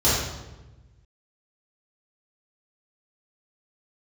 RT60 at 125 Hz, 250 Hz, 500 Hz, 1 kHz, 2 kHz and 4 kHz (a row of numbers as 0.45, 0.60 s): 1.9, 1.5, 1.2, 1.0, 0.90, 0.80 s